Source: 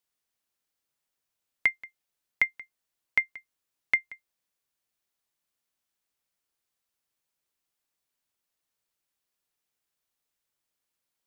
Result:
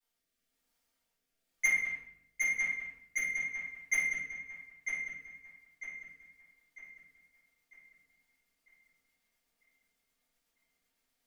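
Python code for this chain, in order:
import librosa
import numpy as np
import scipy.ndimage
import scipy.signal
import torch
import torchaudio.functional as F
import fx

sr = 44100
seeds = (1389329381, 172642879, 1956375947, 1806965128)

p1 = fx.local_reverse(x, sr, ms=38.0)
p2 = fx.hum_notches(p1, sr, base_hz=50, count=4)
p3 = p2 + 0.54 * np.pad(p2, (int(4.3 * sr / 1000.0), 0))[:len(p2)]
p4 = 10.0 ** (-24.5 / 20.0) * np.tanh(p3 / 10.0 ** (-24.5 / 20.0))
p5 = fx.rotary_switch(p4, sr, hz=1.0, then_hz=8.0, switch_at_s=4.36)
p6 = p5 + fx.echo_filtered(p5, sr, ms=949, feedback_pct=46, hz=4300.0, wet_db=-5.0, dry=0)
p7 = fx.room_shoebox(p6, sr, seeds[0], volume_m3=190.0, walls='mixed', distance_m=3.7)
y = p7 * librosa.db_to_amplitude(-5.0)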